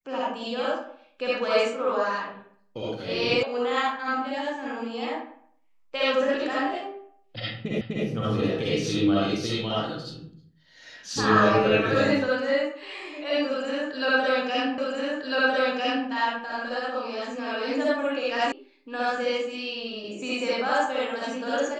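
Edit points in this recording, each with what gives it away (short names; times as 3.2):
3.43 sound cut off
7.81 repeat of the last 0.25 s
14.78 repeat of the last 1.3 s
18.52 sound cut off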